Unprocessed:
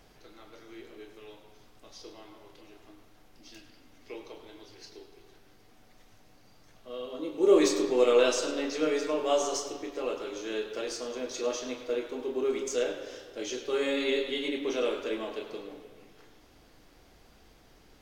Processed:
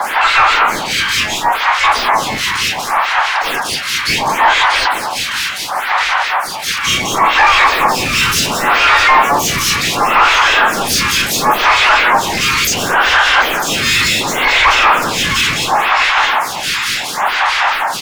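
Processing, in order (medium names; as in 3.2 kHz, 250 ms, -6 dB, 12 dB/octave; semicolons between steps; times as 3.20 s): rattle on loud lows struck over -35 dBFS, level -27 dBFS; steep high-pass 810 Hz 72 dB/octave; treble shelf 5.6 kHz -2 dB; in parallel at +3 dB: compression 5:1, threshold -51 dBFS, peak gain reduction 20 dB; on the sum: harmonic tremolo 4.7 Hz, depth 100%, crossover 1.6 kHz; harmony voices -5 st -11 dB, +12 st -3 dB; short-mantissa float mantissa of 2-bit; on a send: feedback delay 952 ms, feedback 60%, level -22.5 dB; on the sum: overdrive pedal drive 36 dB, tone 1.2 kHz, clips at -20.5 dBFS; loudness maximiser +28.5 dB; lamp-driven phase shifter 0.7 Hz; trim -1 dB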